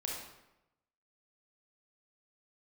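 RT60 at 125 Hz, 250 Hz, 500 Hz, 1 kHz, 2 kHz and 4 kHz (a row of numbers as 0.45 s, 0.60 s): 1.0 s, 0.95 s, 0.95 s, 0.90 s, 0.80 s, 0.65 s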